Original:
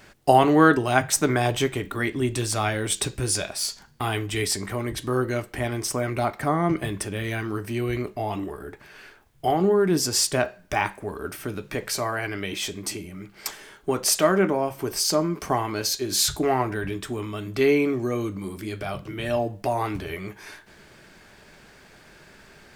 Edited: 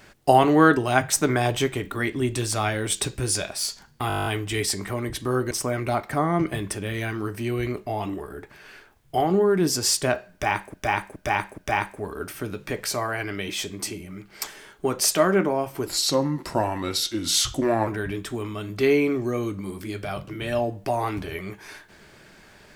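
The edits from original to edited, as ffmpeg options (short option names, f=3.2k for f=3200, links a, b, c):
-filter_complex "[0:a]asplit=16[a][b][c][d][e][f][g][h][i][j][k][l][m][n][o][p];[a]atrim=end=4.102[q];[b]atrim=start=4.078:end=4.102[r];[c]atrim=start=4.078:end=4.102[s];[d]atrim=start=4.078:end=4.102[t];[e]atrim=start=4.078:end=4.102[u];[f]atrim=start=4.078:end=4.102[v];[g]atrim=start=4.078:end=4.102[w];[h]atrim=start=4.078:end=4.102[x];[i]atrim=start=4.078:end=4.102[y];[j]atrim=start=4.078:end=5.332[z];[k]atrim=start=5.808:end=11.042[aa];[l]atrim=start=10.618:end=11.042[ab];[m]atrim=start=10.618:end=11.042[ac];[n]atrim=start=10.618:end=14.904[ad];[o]atrim=start=14.9:end=16.65,asetpts=PTS-STARTPTS,asetrate=38367,aresample=44100[ae];[p]atrim=start=16.646[af];[q][r]acrossfade=d=0.004:c1=hsin:c2=hsin[ag];[ag][s]acrossfade=d=0.004:c1=hsin:c2=hsin[ah];[ah][t]acrossfade=d=0.004:c1=hsin:c2=hsin[ai];[ai][u]acrossfade=d=0.004:c1=hsin:c2=hsin[aj];[aj][v]acrossfade=d=0.004:c1=hsin:c2=hsin[ak];[ak][w]acrossfade=d=0.004:c1=hsin:c2=hsin[al];[al][x]acrossfade=d=0.004:c1=hsin:c2=hsin[am];[am][y]acrossfade=d=0.004:c1=hsin:c2=hsin[an];[an][z]acrossfade=d=0.004:c1=hsin:c2=hsin[ao];[ao][aa]acrossfade=d=0.004:c1=hsin:c2=hsin[ap];[ap][ab]acrossfade=d=0.004:c1=hsin:c2=hsin[aq];[aq][ac]acrossfade=d=0.004:c1=hsin:c2=hsin[ar];[ar][ad]acrossfade=d=0.004:c1=hsin:c2=hsin[as];[as][ae]acrossfade=d=0.004:c1=hsin:c2=hsin[at];[at][af]acrossfade=d=0.004:c1=hsin:c2=hsin"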